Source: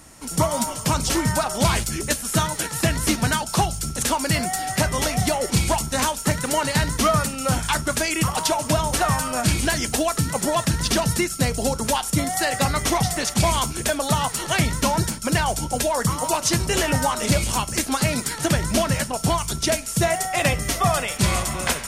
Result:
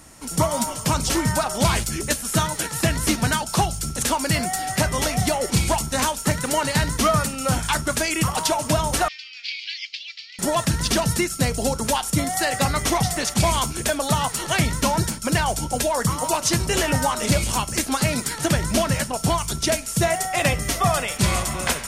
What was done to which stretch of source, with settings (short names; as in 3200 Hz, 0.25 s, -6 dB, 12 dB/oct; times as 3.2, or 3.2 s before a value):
9.08–10.39 elliptic band-pass 2200–4800 Hz, stop band 50 dB